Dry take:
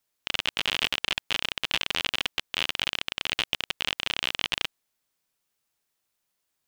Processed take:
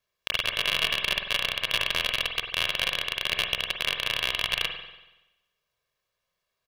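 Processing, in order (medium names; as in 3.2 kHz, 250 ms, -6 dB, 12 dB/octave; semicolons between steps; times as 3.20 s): median filter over 5 samples; comb 1.8 ms, depth 68%; spring tank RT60 1 s, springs 47 ms, chirp 65 ms, DRR 4.5 dB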